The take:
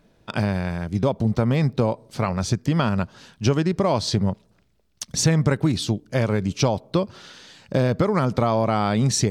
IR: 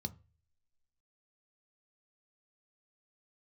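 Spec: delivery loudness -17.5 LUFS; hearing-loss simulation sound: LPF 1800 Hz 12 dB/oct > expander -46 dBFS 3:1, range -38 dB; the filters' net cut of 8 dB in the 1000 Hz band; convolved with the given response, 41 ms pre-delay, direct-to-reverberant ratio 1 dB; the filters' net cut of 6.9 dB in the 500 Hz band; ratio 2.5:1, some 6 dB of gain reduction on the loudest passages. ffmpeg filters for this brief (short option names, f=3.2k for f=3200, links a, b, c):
-filter_complex "[0:a]equalizer=f=500:t=o:g=-6.5,equalizer=f=1k:t=o:g=-8,acompressor=threshold=-25dB:ratio=2.5,asplit=2[a][b];[1:a]atrim=start_sample=2205,adelay=41[c];[b][c]afir=irnorm=-1:irlink=0,volume=1dB[d];[a][d]amix=inputs=2:normalize=0,lowpass=1.8k,agate=range=-38dB:threshold=-46dB:ratio=3,volume=1.5dB"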